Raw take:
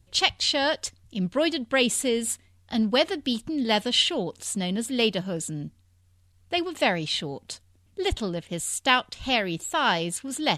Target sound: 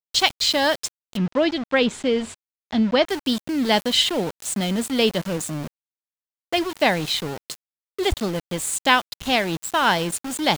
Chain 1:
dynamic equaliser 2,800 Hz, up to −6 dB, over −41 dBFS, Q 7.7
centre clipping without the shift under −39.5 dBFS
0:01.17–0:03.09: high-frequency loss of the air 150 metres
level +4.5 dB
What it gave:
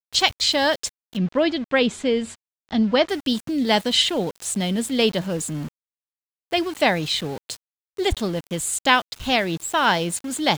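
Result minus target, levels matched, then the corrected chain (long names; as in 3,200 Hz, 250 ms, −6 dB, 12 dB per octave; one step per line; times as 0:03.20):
centre clipping without the shift: distortion −8 dB
dynamic equaliser 2,800 Hz, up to −6 dB, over −41 dBFS, Q 7.7
centre clipping without the shift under −33 dBFS
0:01.17–0:03.09: high-frequency loss of the air 150 metres
level +4.5 dB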